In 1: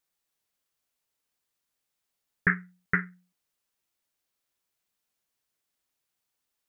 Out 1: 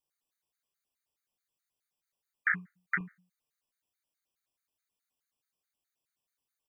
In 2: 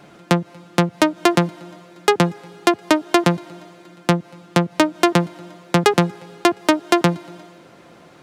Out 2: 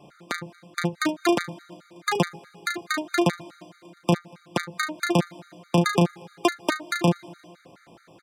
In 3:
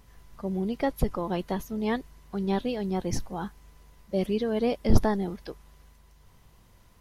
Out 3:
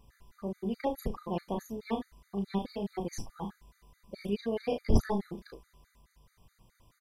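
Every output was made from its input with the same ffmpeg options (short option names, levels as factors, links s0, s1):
-af "aecho=1:1:35|72:0.596|0.2,afftfilt=real='re*gt(sin(2*PI*4.7*pts/sr)*(1-2*mod(floor(b*sr/1024/1200),2)),0)':imag='im*gt(sin(2*PI*4.7*pts/sr)*(1-2*mod(floor(b*sr/1024/1200),2)),0)':win_size=1024:overlap=0.75,volume=0.596"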